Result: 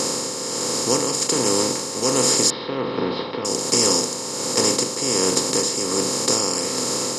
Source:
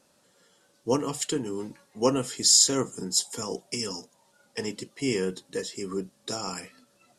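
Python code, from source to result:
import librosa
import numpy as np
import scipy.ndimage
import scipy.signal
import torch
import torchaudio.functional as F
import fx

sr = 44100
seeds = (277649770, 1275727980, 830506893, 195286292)

y = fx.bin_compress(x, sr, power=0.2)
y = fx.ellip_lowpass(y, sr, hz=3800.0, order=4, stop_db=50, at=(2.5, 3.45))
y = y * (1.0 - 0.48 / 2.0 + 0.48 / 2.0 * np.cos(2.0 * np.pi * 1.3 * (np.arange(len(y)) / sr)))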